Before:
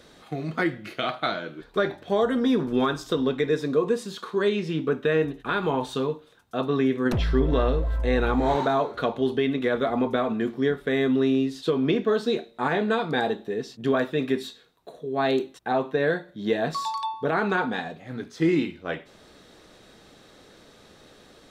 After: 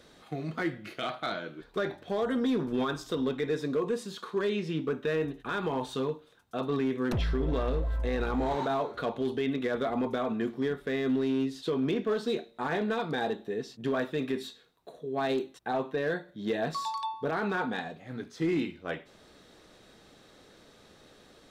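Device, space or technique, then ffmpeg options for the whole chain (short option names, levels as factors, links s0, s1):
limiter into clipper: -af "alimiter=limit=0.158:level=0:latency=1:release=19,asoftclip=type=hard:threshold=0.126,volume=0.596"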